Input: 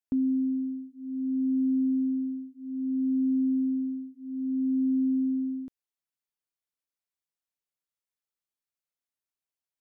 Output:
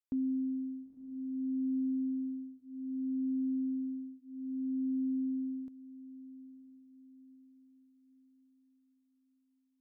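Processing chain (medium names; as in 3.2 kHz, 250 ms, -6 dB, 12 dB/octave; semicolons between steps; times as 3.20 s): echo that smears into a reverb 963 ms, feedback 41%, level -15.5 dB; trim -7 dB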